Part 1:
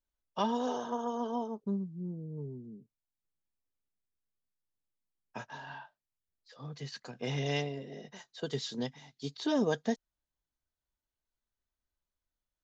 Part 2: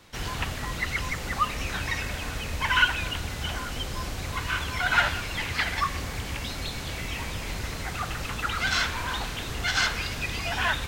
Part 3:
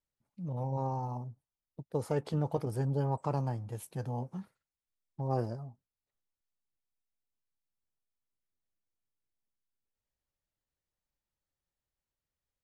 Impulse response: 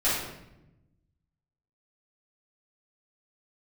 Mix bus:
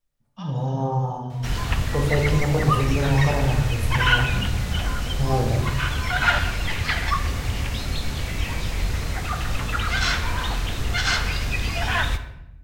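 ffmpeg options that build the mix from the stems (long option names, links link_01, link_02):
-filter_complex "[0:a]highpass=1200,volume=-7dB,asplit=2[link_01][link_02];[link_02]volume=-12dB[link_03];[1:a]adelay=1300,volume=1dB,asplit=2[link_04][link_05];[link_05]volume=-20dB[link_06];[2:a]volume=2dB,asplit=2[link_07][link_08];[link_08]volume=-9dB[link_09];[3:a]atrim=start_sample=2205[link_10];[link_03][link_06][link_09]amix=inputs=3:normalize=0[link_11];[link_11][link_10]afir=irnorm=-1:irlink=0[link_12];[link_01][link_04][link_07][link_12]amix=inputs=4:normalize=0,lowshelf=frequency=150:gain=8"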